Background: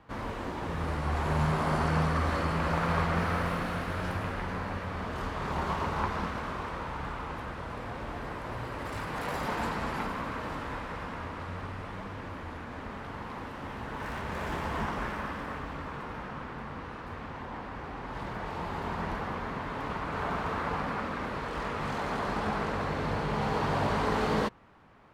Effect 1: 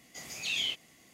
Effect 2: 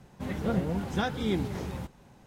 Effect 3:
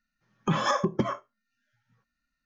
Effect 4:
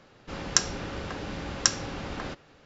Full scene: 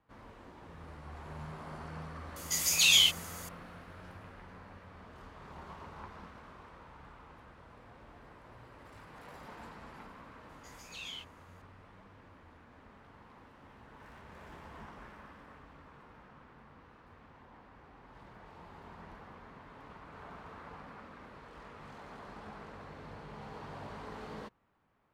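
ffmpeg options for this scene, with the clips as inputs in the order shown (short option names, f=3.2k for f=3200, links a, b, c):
-filter_complex "[1:a]asplit=2[a][b];[0:a]volume=-17dB[c];[a]crystalizer=i=8:c=0,atrim=end=1.13,asetpts=PTS-STARTPTS,volume=-3dB,afade=t=in:d=0.004:c=hsin,afade=t=out:st=1.126:d=0.004:c=hsin,adelay=2360[d];[b]atrim=end=1.13,asetpts=PTS-STARTPTS,volume=-12.5dB,afade=t=in:d=0.004:c=hsin,afade=t=out:st=1.126:d=0.004:c=hsin,adelay=10490[e];[c][d][e]amix=inputs=3:normalize=0"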